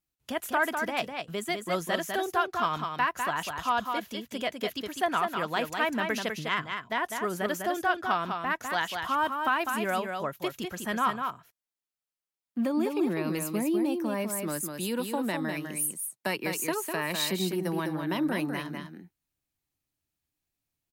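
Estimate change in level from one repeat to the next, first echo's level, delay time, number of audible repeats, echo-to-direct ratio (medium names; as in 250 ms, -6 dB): no regular repeats, -5.5 dB, 201 ms, 1, -5.5 dB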